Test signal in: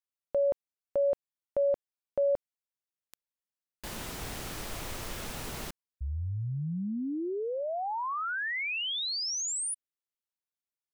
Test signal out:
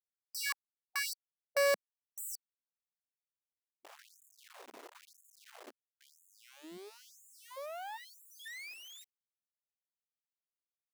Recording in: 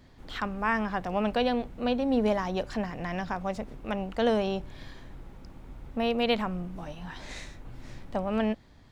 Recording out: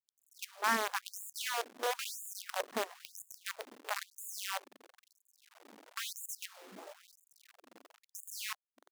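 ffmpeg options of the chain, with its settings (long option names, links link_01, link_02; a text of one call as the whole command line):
ffmpeg -i in.wav -af "adynamicsmooth=sensitivity=3:basefreq=810,acrusher=bits=5:dc=4:mix=0:aa=0.000001,afftfilt=real='re*gte(b*sr/1024,210*pow(6800/210,0.5+0.5*sin(2*PI*1*pts/sr)))':imag='im*gte(b*sr/1024,210*pow(6800/210,0.5+0.5*sin(2*PI*1*pts/sr)))':win_size=1024:overlap=0.75,volume=-3.5dB" out.wav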